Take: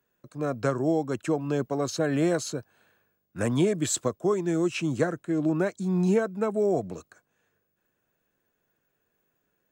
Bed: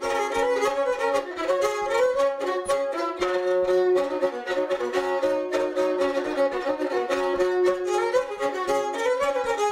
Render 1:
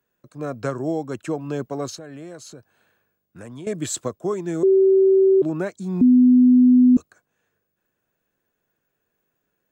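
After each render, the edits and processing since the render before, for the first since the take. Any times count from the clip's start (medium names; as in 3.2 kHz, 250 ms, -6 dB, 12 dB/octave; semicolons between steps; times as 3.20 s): 1.95–3.67 s: compression 2.5:1, threshold -41 dBFS; 4.63–5.42 s: bleep 384 Hz -11.5 dBFS; 6.01–6.97 s: bleep 250 Hz -9.5 dBFS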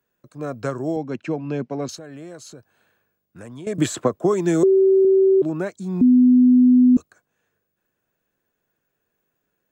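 0.96–1.89 s: cabinet simulation 120–5400 Hz, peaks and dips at 150 Hz +4 dB, 240 Hz +6 dB, 1.2 kHz -5 dB, 2.4 kHz +6 dB, 3.5 kHz -4 dB; 3.78–5.05 s: three bands compressed up and down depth 100%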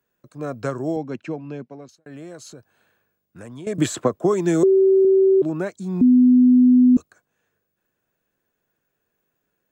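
0.92–2.06 s: fade out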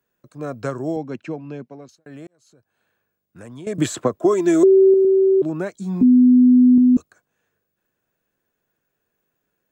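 2.27–3.50 s: fade in; 4.18–4.94 s: comb 3 ms, depth 62%; 5.73–6.78 s: doubling 15 ms -4 dB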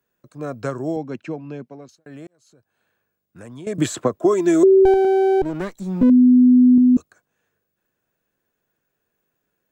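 4.85–6.10 s: comb filter that takes the minimum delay 0.52 ms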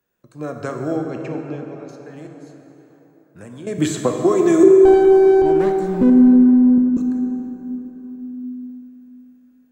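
plate-style reverb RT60 4 s, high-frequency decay 0.5×, DRR 2.5 dB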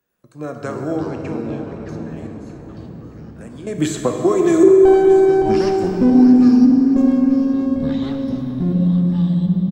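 feedback delay 622 ms, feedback 49%, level -14 dB; ever faster or slower copies 98 ms, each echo -6 st, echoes 3, each echo -6 dB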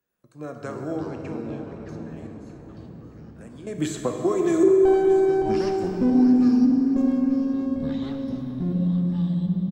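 trim -7 dB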